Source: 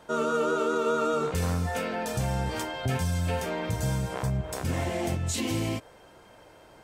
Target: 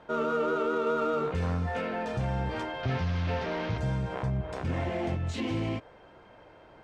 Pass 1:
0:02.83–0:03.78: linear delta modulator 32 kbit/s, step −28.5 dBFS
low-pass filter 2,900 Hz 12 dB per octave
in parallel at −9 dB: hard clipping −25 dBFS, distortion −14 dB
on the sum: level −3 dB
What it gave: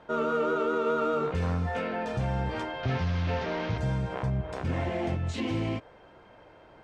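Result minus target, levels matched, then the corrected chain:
hard clipping: distortion −7 dB
0:02.83–0:03.78: linear delta modulator 32 kbit/s, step −28.5 dBFS
low-pass filter 2,900 Hz 12 dB per octave
in parallel at −9 dB: hard clipping −32 dBFS, distortion −7 dB
on the sum: level −3 dB

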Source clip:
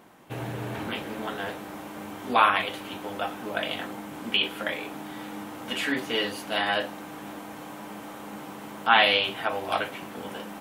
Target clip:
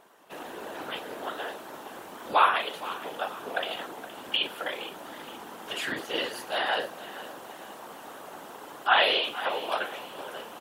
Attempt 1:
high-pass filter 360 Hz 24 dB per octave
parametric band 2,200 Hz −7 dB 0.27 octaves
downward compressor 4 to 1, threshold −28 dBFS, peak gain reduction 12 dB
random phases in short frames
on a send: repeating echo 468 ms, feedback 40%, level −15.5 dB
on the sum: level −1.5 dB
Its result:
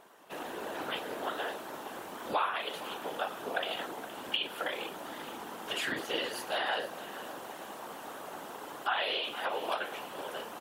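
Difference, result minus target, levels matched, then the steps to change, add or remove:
downward compressor: peak gain reduction +12 dB
remove: downward compressor 4 to 1, threshold −28 dBFS, peak gain reduction 12 dB

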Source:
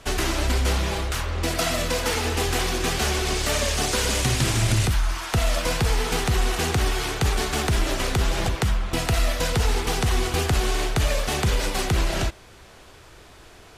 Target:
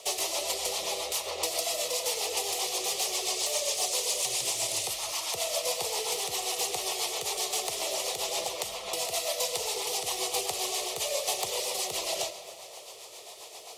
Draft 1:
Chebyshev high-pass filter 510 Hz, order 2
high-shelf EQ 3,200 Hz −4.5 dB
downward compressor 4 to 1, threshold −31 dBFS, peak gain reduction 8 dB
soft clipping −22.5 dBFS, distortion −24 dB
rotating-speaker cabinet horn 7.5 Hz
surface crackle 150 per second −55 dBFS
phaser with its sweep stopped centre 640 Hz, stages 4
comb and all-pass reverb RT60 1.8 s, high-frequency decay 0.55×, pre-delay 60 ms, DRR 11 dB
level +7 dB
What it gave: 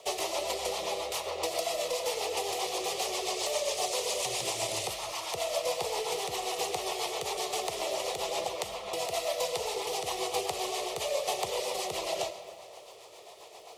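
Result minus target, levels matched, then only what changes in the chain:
8,000 Hz band −4.0 dB
change: high-shelf EQ 3,200 Hz +7.5 dB

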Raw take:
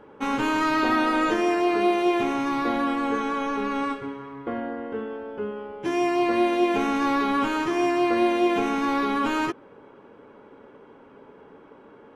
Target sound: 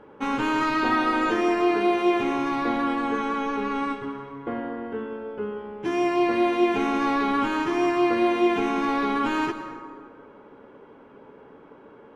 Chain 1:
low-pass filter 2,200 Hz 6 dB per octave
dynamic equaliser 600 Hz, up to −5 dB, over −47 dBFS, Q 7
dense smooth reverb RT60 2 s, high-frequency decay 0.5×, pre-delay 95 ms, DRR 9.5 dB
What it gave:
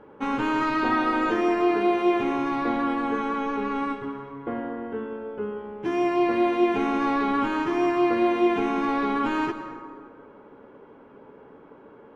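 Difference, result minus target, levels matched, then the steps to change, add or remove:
4,000 Hz band −3.0 dB
change: low-pass filter 5,300 Hz 6 dB per octave

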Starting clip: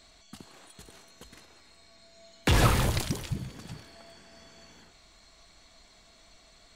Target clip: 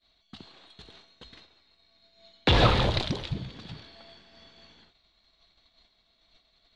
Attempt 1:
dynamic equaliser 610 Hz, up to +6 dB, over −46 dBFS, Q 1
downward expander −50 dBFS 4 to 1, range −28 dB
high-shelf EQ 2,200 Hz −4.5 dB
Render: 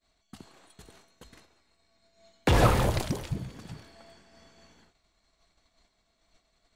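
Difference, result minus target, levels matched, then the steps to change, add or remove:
4,000 Hz band −7.5 dB
add after downward expander: low-pass with resonance 3,800 Hz, resonance Q 3.9

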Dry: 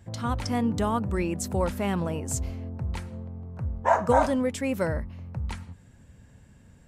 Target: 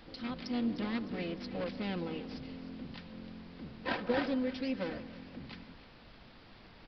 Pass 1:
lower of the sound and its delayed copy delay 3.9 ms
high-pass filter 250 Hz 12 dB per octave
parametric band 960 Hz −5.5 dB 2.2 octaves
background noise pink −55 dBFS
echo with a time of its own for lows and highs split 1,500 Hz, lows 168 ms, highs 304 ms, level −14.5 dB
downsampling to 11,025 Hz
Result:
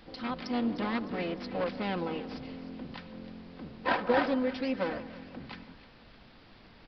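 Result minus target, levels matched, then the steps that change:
1,000 Hz band +4.0 dB
change: parametric band 960 Hz −15.5 dB 2.2 octaves

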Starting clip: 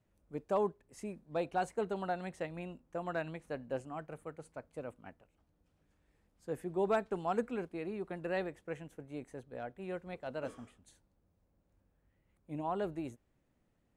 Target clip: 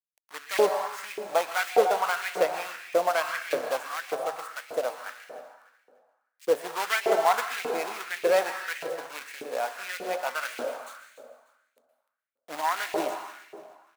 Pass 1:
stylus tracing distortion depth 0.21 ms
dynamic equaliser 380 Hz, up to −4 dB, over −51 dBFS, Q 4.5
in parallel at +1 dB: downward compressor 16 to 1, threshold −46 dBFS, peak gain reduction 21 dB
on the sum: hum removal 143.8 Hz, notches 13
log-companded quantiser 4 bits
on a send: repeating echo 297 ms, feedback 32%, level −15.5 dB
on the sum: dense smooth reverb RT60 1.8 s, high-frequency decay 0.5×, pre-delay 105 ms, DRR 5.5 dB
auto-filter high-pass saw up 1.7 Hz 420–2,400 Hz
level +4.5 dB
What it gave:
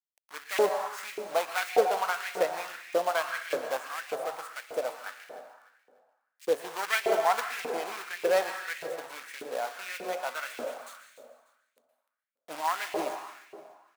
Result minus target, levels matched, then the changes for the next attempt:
downward compressor: peak gain reduction +10.5 dB
change: downward compressor 16 to 1, threshold −35 dBFS, peak gain reduction 10.5 dB

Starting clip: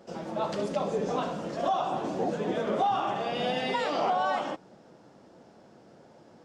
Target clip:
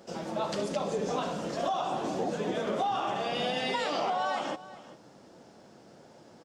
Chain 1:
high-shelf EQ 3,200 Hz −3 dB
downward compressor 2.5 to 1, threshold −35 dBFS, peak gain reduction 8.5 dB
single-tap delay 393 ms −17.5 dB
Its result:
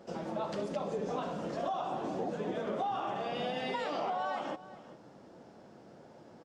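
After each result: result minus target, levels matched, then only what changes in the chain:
8,000 Hz band −7.5 dB; downward compressor: peak gain reduction +4 dB
change: high-shelf EQ 3,200 Hz +7.5 dB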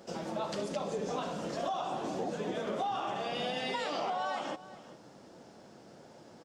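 downward compressor: peak gain reduction +4 dB
change: downward compressor 2.5 to 1, threshold −28 dBFS, peak gain reduction 4.5 dB

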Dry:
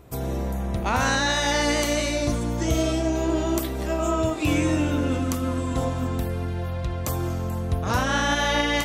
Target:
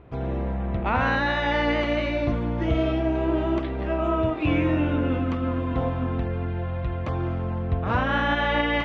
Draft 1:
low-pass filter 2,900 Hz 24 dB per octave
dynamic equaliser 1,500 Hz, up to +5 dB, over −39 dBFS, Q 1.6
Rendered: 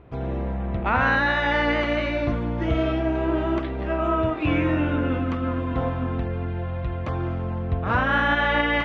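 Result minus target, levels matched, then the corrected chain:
2,000 Hz band +3.0 dB
low-pass filter 2,900 Hz 24 dB per octave

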